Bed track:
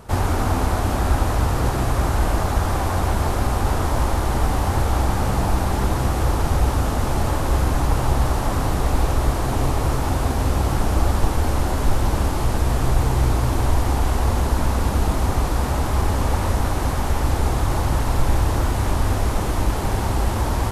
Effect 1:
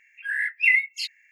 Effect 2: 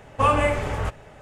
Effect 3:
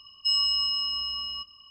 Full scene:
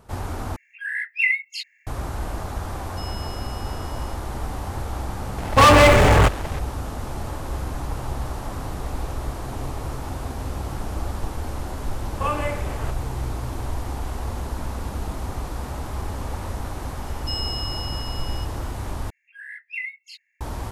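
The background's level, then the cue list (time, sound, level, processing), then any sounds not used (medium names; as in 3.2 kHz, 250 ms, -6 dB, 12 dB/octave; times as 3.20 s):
bed track -9.5 dB
0.56 s: replace with 1 -1.5 dB
2.72 s: add 3 -17 dB
5.38 s: add 2 -1.5 dB + waveshaping leveller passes 5
12.01 s: add 2 -6 dB
17.02 s: add 3 -6 dB
19.10 s: replace with 1 -12.5 dB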